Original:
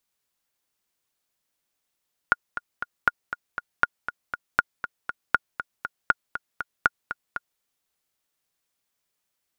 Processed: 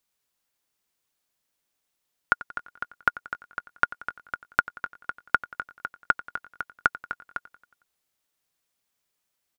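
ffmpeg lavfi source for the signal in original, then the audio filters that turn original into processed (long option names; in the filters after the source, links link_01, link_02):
-f lavfi -i "aevalsrc='pow(10,(-4-11.5*gte(mod(t,3*60/238),60/238))/20)*sin(2*PI*1430*mod(t,60/238))*exp(-6.91*mod(t,60/238)/0.03)':duration=5.29:sample_rate=44100"
-af "aecho=1:1:91|182|273|364|455:0.126|0.0718|0.0409|0.0233|0.0133"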